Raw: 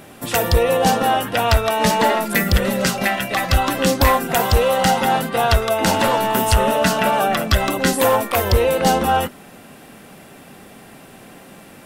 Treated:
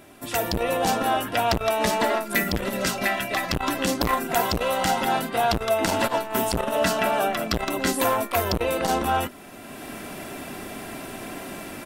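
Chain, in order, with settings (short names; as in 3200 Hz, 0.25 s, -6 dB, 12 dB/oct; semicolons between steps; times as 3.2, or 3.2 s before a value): rattling part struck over -25 dBFS, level -31 dBFS; comb 3 ms, depth 41%; AGC gain up to 14 dB; core saturation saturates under 450 Hz; gain -8 dB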